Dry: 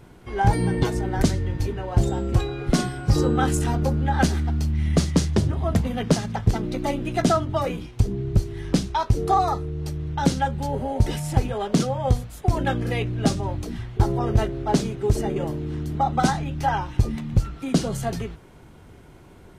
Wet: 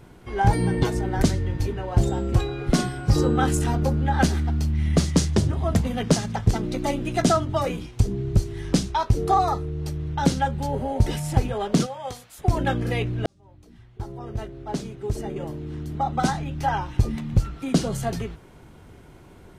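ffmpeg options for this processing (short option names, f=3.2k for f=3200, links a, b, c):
-filter_complex "[0:a]asettb=1/sr,asplit=3[a][b][c];[a]atrim=end=5.044[d];[b]atrim=start=5.04:end=8.91,asetpts=PTS-STARTPTS,afade=t=in:d=0.004:c=qsin,afade=t=out:st=3.866:d=0.004:c=qsin,equalizer=f=7.4k:w=0.81:g=4[e];[c]atrim=start=8.906[f];[d][e]acrossfade=d=0.004:c1=hsin:c2=qsin[g];[g][f]acrossfade=d=0.004:c1=qsin:c2=hsin,asplit=3[h][i][j];[h]afade=t=out:st=11.85:d=0.02[k];[i]highpass=f=1.3k:p=1,afade=t=in:st=11.85:d=0.02,afade=t=out:st=12.38:d=0.02[l];[j]afade=t=in:st=12.38:d=0.02[m];[k][l][m]amix=inputs=3:normalize=0,asplit=2[n][o];[n]atrim=end=13.26,asetpts=PTS-STARTPTS,afade=t=out:st=13.256:d=0.004:c=hsin[p];[o]atrim=start=13.26,asetpts=PTS-STARTPTS,afade=t=in:d=3.91[q];[p][q]concat=n=2:v=0:a=1"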